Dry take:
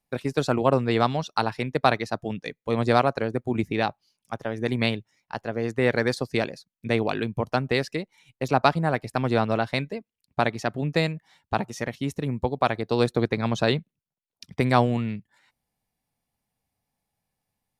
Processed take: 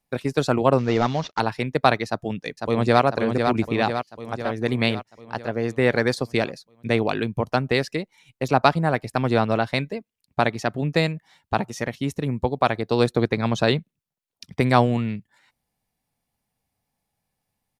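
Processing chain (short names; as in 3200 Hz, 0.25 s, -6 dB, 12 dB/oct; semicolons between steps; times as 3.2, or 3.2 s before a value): 0.78–1.4 CVSD 32 kbps; 2.07–3.02 echo throw 0.5 s, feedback 60%, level -5 dB; gain +2.5 dB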